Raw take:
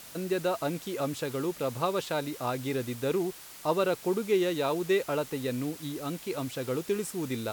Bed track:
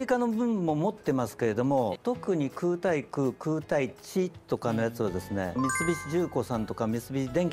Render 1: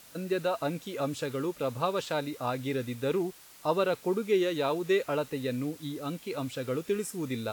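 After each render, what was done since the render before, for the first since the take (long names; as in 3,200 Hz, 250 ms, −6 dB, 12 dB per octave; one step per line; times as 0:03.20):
noise reduction from a noise print 6 dB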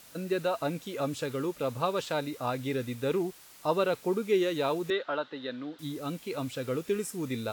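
0:04.90–0:05.79: loudspeaker in its box 330–3,800 Hz, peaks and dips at 450 Hz −7 dB, 1,500 Hz +6 dB, 2,400 Hz −10 dB, 3,600 Hz +7 dB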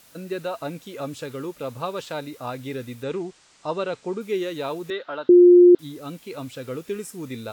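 0:03.03–0:04.21: Butterworth low-pass 8,500 Hz 48 dB per octave
0:05.29–0:05.75: beep over 354 Hz −7.5 dBFS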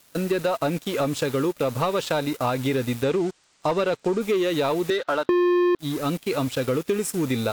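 leveller curve on the samples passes 3
downward compressor 6 to 1, threshold −20 dBFS, peak gain reduction 10 dB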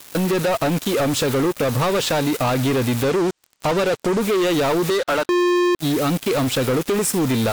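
downward compressor 6 to 1, threshold −28 dBFS, peak gain reduction 10 dB
leveller curve on the samples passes 5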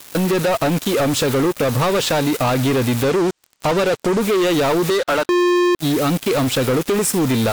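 level +2 dB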